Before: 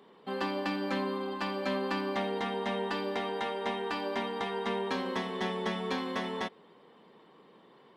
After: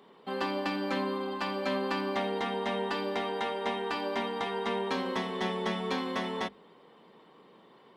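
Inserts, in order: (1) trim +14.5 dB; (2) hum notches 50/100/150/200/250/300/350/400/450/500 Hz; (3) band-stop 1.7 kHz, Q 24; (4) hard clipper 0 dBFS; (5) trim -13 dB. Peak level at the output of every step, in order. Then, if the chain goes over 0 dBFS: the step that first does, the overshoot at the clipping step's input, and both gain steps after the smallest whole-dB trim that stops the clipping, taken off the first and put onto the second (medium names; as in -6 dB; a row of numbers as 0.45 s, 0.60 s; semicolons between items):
-4.0 dBFS, -4.5 dBFS, -4.5 dBFS, -4.5 dBFS, -17.5 dBFS; nothing clips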